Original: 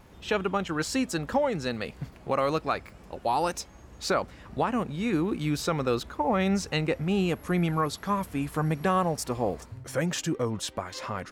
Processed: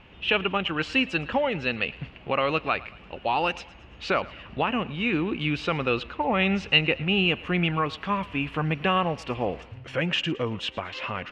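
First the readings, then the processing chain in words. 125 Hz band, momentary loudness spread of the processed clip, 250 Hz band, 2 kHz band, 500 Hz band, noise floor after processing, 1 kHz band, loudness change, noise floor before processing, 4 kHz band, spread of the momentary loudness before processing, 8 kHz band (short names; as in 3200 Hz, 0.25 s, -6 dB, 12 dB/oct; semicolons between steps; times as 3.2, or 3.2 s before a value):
0.0 dB, 9 LU, 0.0 dB, +8.5 dB, +0.5 dB, -49 dBFS, +1.0 dB, +2.5 dB, -51 dBFS, +8.5 dB, 9 LU, under -10 dB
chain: synth low-pass 2800 Hz, resonance Q 6.5; on a send: thinning echo 0.112 s, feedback 48%, level -19.5 dB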